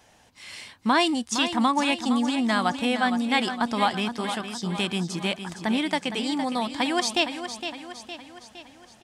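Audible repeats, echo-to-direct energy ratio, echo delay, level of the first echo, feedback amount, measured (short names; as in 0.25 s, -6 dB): 5, -8.0 dB, 0.462 s, -9.5 dB, 51%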